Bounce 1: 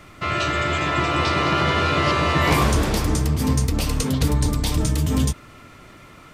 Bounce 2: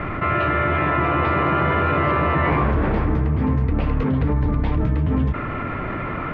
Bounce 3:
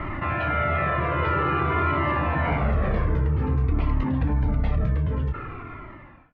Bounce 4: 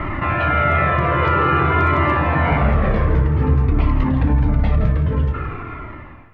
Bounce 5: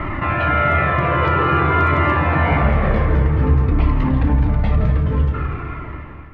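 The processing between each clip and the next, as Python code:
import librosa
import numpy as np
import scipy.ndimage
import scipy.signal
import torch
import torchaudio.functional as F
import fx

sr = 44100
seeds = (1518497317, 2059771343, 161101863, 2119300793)

y1 = scipy.signal.sosfilt(scipy.signal.butter(4, 2100.0, 'lowpass', fs=sr, output='sos'), x)
y1 = fx.env_flatten(y1, sr, amount_pct=70)
y1 = y1 * 10.0 ** (-2.0 / 20.0)
y2 = fx.fade_out_tail(y1, sr, length_s=1.47)
y2 = fx.comb_cascade(y2, sr, direction='falling', hz=0.51)
y3 = np.clip(y2, -10.0 ** (-13.0 / 20.0), 10.0 ** (-13.0 / 20.0))
y3 = y3 + 10.0 ** (-11.0 / 20.0) * np.pad(y3, (int(167 * sr / 1000.0), 0))[:len(y3)]
y3 = fx.rev_schroeder(y3, sr, rt60_s=2.9, comb_ms=28, drr_db=17.5)
y3 = y3 * 10.0 ** (6.5 / 20.0)
y4 = fx.echo_feedback(y3, sr, ms=247, feedback_pct=57, wet_db=-12.0)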